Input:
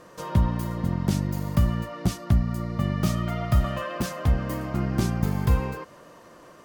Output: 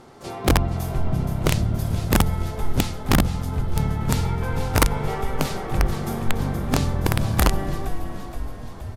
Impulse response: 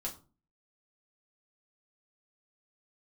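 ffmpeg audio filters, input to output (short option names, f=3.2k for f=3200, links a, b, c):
-filter_complex "[0:a]asplit=3[a][b][c];[b]asetrate=22050,aresample=44100,atempo=2,volume=-11dB[d];[c]asetrate=66075,aresample=44100,atempo=0.66742,volume=-9dB[e];[a][d][e]amix=inputs=3:normalize=0,asplit=8[f][g][h][i][j][k][l][m];[g]adelay=350,afreqshift=-64,volume=-7dB[n];[h]adelay=700,afreqshift=-128,volume=-11.7dB[o];[i]adelay=1050,afreqshift=-192,volume=-16.5dB[p];[j]adelay=1400,afreqshift=-256,volume=-21.2dB[q];[k]adelay=1750,afreqshift=-320,volume=-25.9dB[r];[l]adelay=2100,afreqshift=-384,volume=-30.7dB[s];[m]adelay=2450,afreqshift=-448,volume=-35.4dB[t];[f][n][o][p][q][r][s][t]amix=inputs=8:normalize=0,asplit=2[u][v];[1:a]atrim=start_sample=2205,atrim=end_sample=6615[w];[v][w]afir=irnorm=-1:irlink=0,volume=-10.5dB[x];[u][x]amix=inputs=2:normalize=0,aeval=exprs='(mod(3.16*val(0)+1,2)-1)/3.16':c=same,asetrate=32667,aresample=44100"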